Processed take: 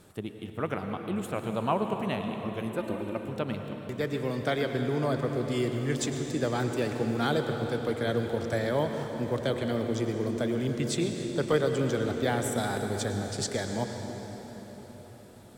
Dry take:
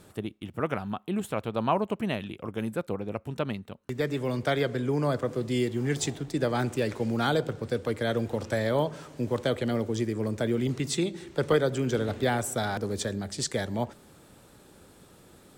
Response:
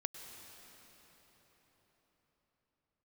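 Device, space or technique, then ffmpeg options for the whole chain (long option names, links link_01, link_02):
cathedral: -filter_complex "[1:a]atrim=start_sample=2205[link_01];[0:a][link_01]afir=irnorm=-1:irlink=0,asettb=1/sr,asplit=3[link_02][link_03][link_04];[link_02]atrim=end=2.784[link_05];[link_03]atrim=start=2.78:end=3.29,asetpts=PTS-STARTPTS,afade=type=in:duration=0.004:curve=qsin,afade=type=out:start_time=0.506:duration=0.004:curve=qsin,aecho=1:1:3.3:0.65,atrim=end_sample=22491[link_06];[link_04]atrim=start=3.286[link_07];[link_05][link_06]acrossfade=duration=0.004:curve1=hsin:curve2=qsin[link_08];[link_08][link_07]acrossfade=duration=0.004:curve1=qsin:curve2=hsin"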